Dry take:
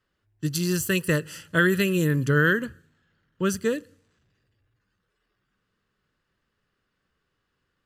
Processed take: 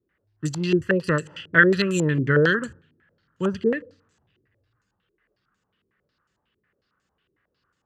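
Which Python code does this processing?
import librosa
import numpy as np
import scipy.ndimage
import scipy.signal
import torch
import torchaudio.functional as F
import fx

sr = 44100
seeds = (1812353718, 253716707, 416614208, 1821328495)

y = scipy.signal.sosfilt(scipy.signal.butter(2, 48.0, 'highpass', fs=sr, output='sos'), x)
y = fx.filter_held_lowpass(y, sr, hz=11.0, low_hz=360.0, high_hz=7200.0)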